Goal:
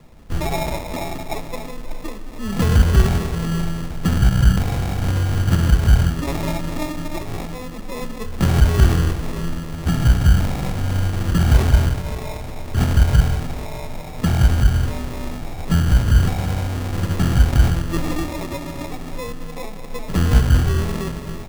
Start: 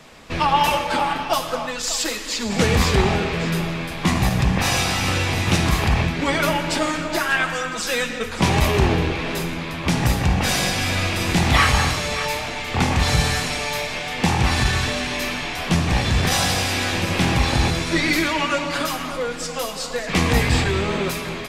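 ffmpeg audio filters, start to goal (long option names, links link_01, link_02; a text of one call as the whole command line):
ffmpeg -i in.wav -af "aemphasis=mode=reproduction:type=riaa,acrusher=samples=29:mix=1:aa=0.000001,volume=-8dB" out.wav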